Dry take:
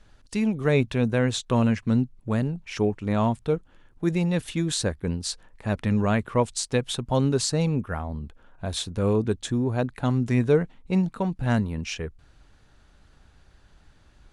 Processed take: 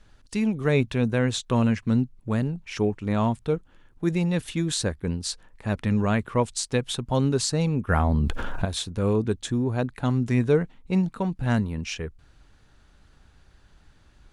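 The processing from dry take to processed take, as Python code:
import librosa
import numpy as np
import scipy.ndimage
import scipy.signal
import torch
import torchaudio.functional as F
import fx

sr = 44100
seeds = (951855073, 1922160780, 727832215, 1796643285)

y = fx.peak_eq(x, sr, hz=630.0, db=-2.0, octaves=0.77)
y = fx.env_flatten(y, sr, amount_pct=70, at=(7.88, 8.64), fade=0.02)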